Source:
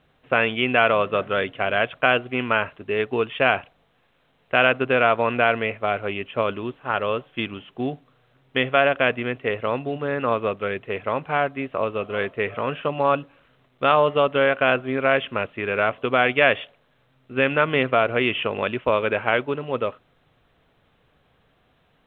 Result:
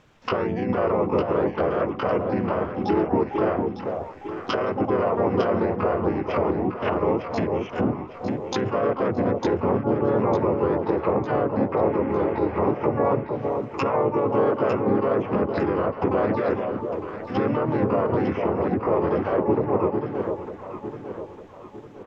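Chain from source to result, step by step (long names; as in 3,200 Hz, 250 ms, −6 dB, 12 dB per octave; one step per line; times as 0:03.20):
pitch-shifted copies added −5 semitones −1 dB, −3 semitones −1 dB, +12 semitones −3 dB
healed spectral selection 0:11.76–0:12.60, 1,400–3,400 Hz after
brickwall limiter −10.5 dBFS, peak gain reduction 13.5 dB
treble cut that deepens with the level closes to 820 Hz, closed at −20.5 dBFS
delay that swaps between a low-pass and a high-pass 452 ms, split 950 Hz, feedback 65%, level −4 dB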